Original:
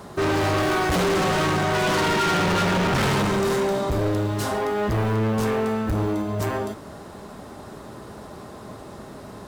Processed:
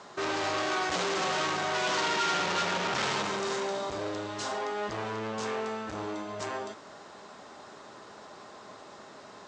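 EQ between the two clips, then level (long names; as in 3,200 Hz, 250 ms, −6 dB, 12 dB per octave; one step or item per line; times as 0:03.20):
high-pass filter 1,000 Hz 6 dB per octave
Butterworth low-pass 7,500 Hz 48 dB per octave
dynamic equaliser 1,900 Hz, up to −3 dB, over −38 dBFS, Q 0.93
−2.0 dB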